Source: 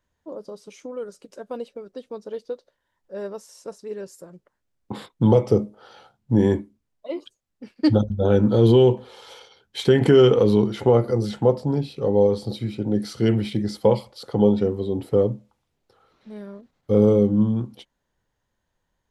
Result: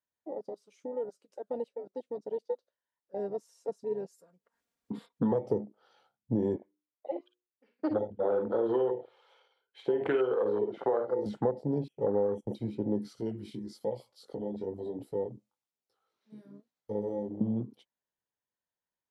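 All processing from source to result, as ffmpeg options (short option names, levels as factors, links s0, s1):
-filter_complex "[0:a]asettb=1/sr,asplit=3[s0][s1][s2];[s0]atrim=end=3.194[s3];[s1]atrim=start=3.19:end=5.32,asetpts=PTS-STARTPTS,afade=t=in:d=0.004:c=qsin,afade=t=out:st=2.126:d=0.004:c=qsin,acompressor=mode=upward:threshold=0.00708:ratio=2.5:attack=3.2:release=140:knee=2.83:detection=peak,aecho=1:1:4.3:0.58,atrim=end_sample=93933[s4];[s2]atrim=start=5.316[s5];[s3][s4]acrossfade=d=0.004:c1=hsin:c2=qsin[s6];[s6][s5]acrossfade=d=0.004:c1=qsin:c2=hsin,asettb=1/sr,asplit=3[s7][s8][s9];[s7]atrim=end=6.564[s10];[s8]atrim=start=6.56:end=11.26,asetpts=PTS-STARTPTS,afade=t=in:d=0.004:c=qsin,afade=t=out:st=4.696:d=0.004:c=qsin,acrossover=split=360 3200:gain=0.178 1 0.141[s11][s12][s13];[s11][s12][s13]amix=inputs=3:normalize=0,bandreject=f=60:t=h:w=6,bandreject=f=120:t=h:w=6,bandreject=f=180:t=h:w=6,bandreject=f=240:t=h:w=6,bandreject=f=300:t=h:w=6,bandreject=f=360:t=h:w=6,bandreject=f=420:t=h:w=6,bandreject=f=480:t=h:w=6,aecho=1:1:46|56|58:0.224|0.335|0.141,atrim=end_sample=207270[s14];[s9]atrim=start=11.256[s15];[s10][s14]acrossfade=d=0.004:c1=hsin:c2=qsin[s16];[s16][s15]acrossfade=d=0.004:c1=qsin:c2=hsin,asettb=1/sr,asplit=3[s17][s18][s19];[s17]atrim=end=11.884[s20];[s18]atrim=start=11.88:end=12.55,asetpts=PTS-STARTPTS,afade=t=in:d=0.004:c=qsin,afade=t=out:st=0.666:d=0.004:c=qsin,agate=range=0.126:threshold=0.02:ratio=16:release=100:detection=peak,asuperstop=centerf=4400:order=20:qfactor=2[s21];[s19]atrim=start=12.546[s22];[s20][s21]acrossfade=d=0.004:c1=hsin:c2=qsin[s23];[s23][s22]acrossfade=d=0.004:c1=qsin:c2=hsin,asettb=1/sr,asplit=3[s24][s25][s26];[s24]atrim=end=13.154[s27];[s25]atrim=start=13.15:end=17.41,asetpts=PTS-STARTPTS,afade=t=in:d=0.004:c=qsin,afade=t=out:st=4.256:d=0.004:c=qsin,bass=f=250:g=-2,treble=f=4000:g=8,acompressor=threshold=0.0501:ratio=3:attack=3.2:release=140:knee=1:detection=peak,flanger=delay=17:depth=6:speed=1.1[s28];[s26]atrim=start=17.406[s29];[s27][s28]acrossfade=d=0.004:c1=hsin:c2=qsin[s30];[s30][s29]acrossfade=d=0.004:c1=qsin:c2=hsin,afwtdn=0.0398,highpass=f=310:p=1,acompressor=threshold=0.0631:ratio=6,volume=0.891"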